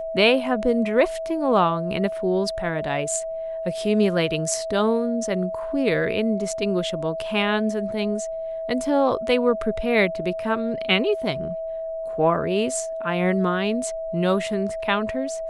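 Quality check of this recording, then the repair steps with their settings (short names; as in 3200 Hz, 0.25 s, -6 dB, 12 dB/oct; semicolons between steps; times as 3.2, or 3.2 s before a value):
tone 650 Hz -27 dBFS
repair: notch 650 Hz, Q 30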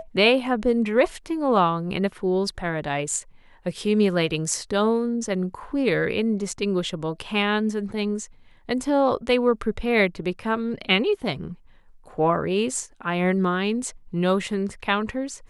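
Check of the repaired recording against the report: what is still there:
none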